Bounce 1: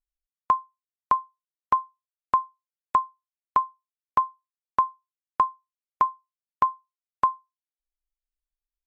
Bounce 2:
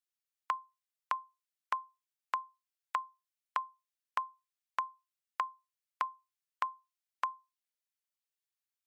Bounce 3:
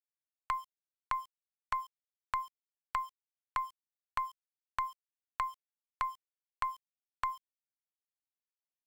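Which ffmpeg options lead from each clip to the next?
-af "highpass=1400,acompressor=threshold=0.0224:ratio=6,volume=1.26"
-af "aeval=exprs='0.158*(cos(1*acos(clip(val(0)/0.158,-1,1)))-cos(1*PI/2))+0.0112*(cos(6*acos(clip(val(0)/0.158,-1,1)))-cos(6*PI/2))':c=same,alimiter=level_in=1.41:limit=0.0631:level=0:latency=1:release=76,volume=0.708,aeval=exprs='val(0)*gte(abs(val(0)),0.00119)':c=same,volume=2.37"

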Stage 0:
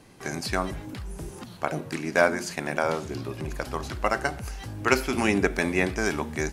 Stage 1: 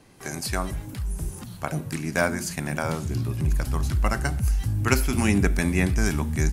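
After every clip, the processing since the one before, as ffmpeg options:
-filter_complex "[0:a]asubboost=boost=7.5:cutoff=180,acrossover=split=760|7800[s0][s1][s2];[s2]dynaudnorm=f=130:g=3:m=3.55[s3];[s0][s1][s3]amix=inputs=3:normalize=0,volume=0.841"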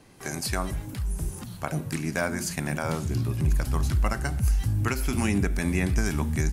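-af "alimiter=limit=0.2:level=0:latency=1:release=177"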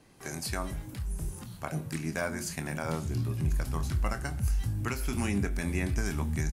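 -filter_complex "[0:a]asplit=2[s0][s1];[s1]adelay=25,volume=0.316[s2];[s0][s2]amix=inputs=2:normalize=0,volume=0.531"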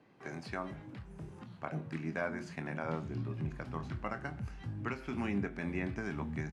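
-af "highpass=140,lowpass=2500,volume=0.708"

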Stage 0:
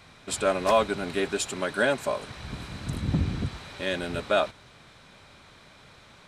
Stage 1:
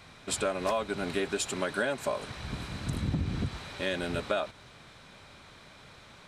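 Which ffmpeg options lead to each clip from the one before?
-af "acompressor=threshold=0.0501:ratio=6"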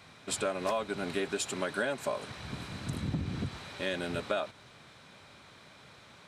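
-af "highpass=85,volume=0.794"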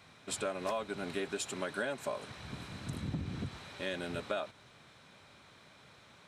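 -af "bandreject=f=4700:w=26,volume=0.631"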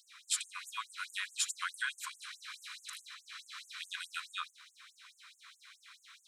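-af "afftfilt=real='re*gte(b*sr/1024,960*pow(6600/960,0.5+0.5*sin(2*PI*4.7*pts/sr)))':imag='im*gte(b*sr/1024,960*pow(6600/960,0.5+0.5*sin(2*PI*4.7*pts/sr)))':win_size=1024:overlap=0.75,volume=2"

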